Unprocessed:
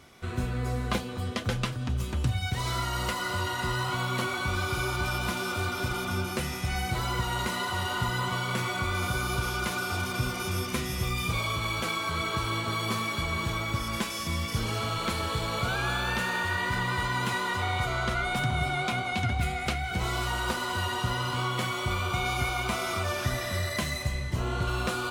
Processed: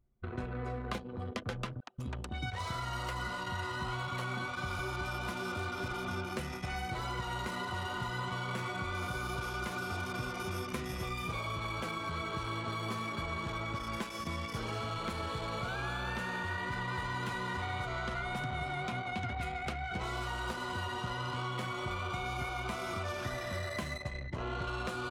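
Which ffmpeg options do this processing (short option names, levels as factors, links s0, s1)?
-filter_complex "[0:a]asettb=1/sr,asplit=3[s0][s1][s2];[s0]atrim=end=1.804[s3];[s1]atrim=start=1.8:end=4.79,asetpts=PTS-STARTPTS,afade=t=in:d=0.004:c=qsin,afade=t=out:st=2.986:d=0.004:c=qsin,acrossover=split=380[s4][s5];[s4]adelay=180[s6];[s6][s5]amix=inputs=2:normalize=0,atrim=end_sample=131859[s7];[s2]atrim=start=4.786[s8];[s3][s7]acrossfade=d=0.004:c1=hsin:c2=qsin[s9];[s9][s8]acrossfade=d=0.004:c1=qsin:c2=hsin,asplit=2[s10][s11];[s11]afade=t=in:st=16.36:d=0.01,afade=t=out:st=17.26:d=0.01,aecho=0:1:580|1160|1740|2320|2900|3480|4060|4640:0.375837|0.225502|0.135301|0.0811809|0.0487085|0.0292251|0.0175351|0.010521[s12];[s10][s12]amix=inputs=2:normalize=0,anlmdn=6.31,acrossover=split=300|1900[s13][s14][s15];[s13]acompressor=threshold=0.0112:ratio=4[s16];[s14]acompressor=threshold=0.0141:ratio=4[s17];[s15]acompressor=threshold=0.00501:ratio=4[s18];[s16][s17][s18]amix=inputs=3:normalize=0,volume=0.891"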